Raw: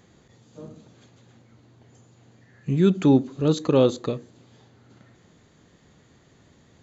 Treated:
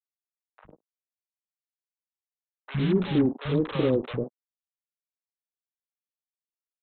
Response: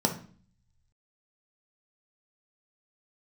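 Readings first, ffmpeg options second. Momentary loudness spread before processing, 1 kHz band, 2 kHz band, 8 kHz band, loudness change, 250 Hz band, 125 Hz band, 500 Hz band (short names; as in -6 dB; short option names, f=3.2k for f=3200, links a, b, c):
13 LU, -5.5 dB, +2.5 dB, n/a, -4.5 dB, -4.5 dB, -4.0 dB, -5.0 dB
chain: -filter_complex "[0:a]afwtdn=0.0178,equalizer=f=940:t=o:w=1.8:g=3.5,acrossover=split=540|1300[a][b][c];[b]acompressor=threshold=-40dB:ratio=6[d];[a][d][c]amix=inputs=3:normalize=0,alimiter=limit=-12.5dB:level=0:latency=1:release=12,aresample=8000,acrusher=bits=4:mix=0:aa=0.5,aresample=44100,acrossover=split=190|690[e][f][g];[e]adelay=60[h];[f]adelay=100[i];[h][i][g]amix=inputs=3:normalize=0"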